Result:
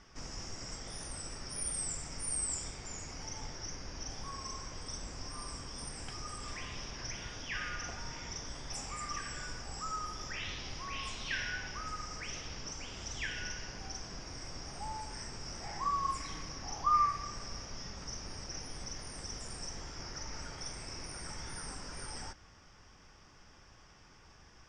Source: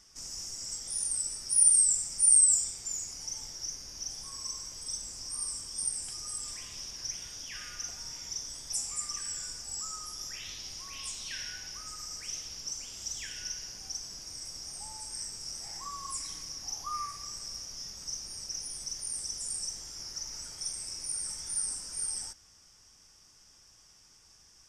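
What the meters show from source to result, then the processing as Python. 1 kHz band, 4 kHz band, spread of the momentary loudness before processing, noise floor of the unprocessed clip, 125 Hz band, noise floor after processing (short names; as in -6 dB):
+9.0 dB, -5.0 dB, 14 LU, -60 dBFS, +9.5 dB, -59 dBFS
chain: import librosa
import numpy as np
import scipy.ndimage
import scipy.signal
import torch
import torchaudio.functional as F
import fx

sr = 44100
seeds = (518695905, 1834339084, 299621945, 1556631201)

y = scipy.signal.sosfilt(scipy.signal.butter(2, 2300.0, 'lowpass', fs=sr, output='sos'), x)
y = y * librosa.db_to_amplitude(9.5)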